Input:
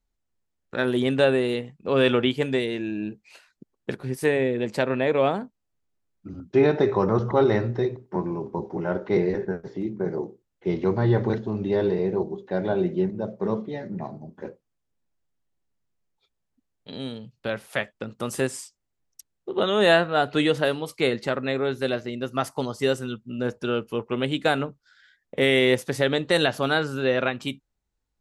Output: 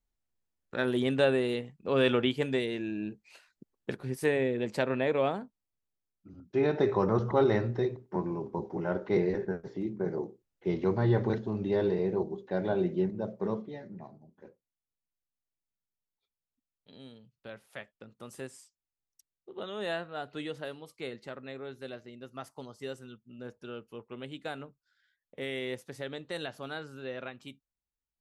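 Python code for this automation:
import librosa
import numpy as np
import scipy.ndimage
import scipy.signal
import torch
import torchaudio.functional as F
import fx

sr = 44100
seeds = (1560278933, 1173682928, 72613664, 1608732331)

y = fx.gain(x, sr, db=fx.line((5.02, -5.5), (6.28, -13.5), (6.86, -5.0), (13.39, -5.0), (14.26, -16.5)))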